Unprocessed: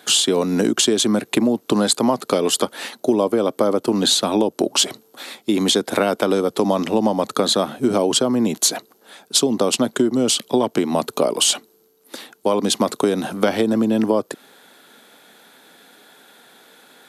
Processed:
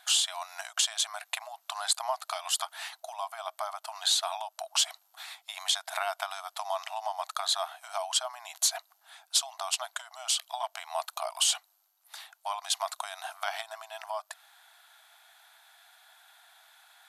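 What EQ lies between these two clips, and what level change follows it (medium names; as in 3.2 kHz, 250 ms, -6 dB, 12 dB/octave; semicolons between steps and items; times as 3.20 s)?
brick-wall FIR high-pass 630 Hz; -8.5 dB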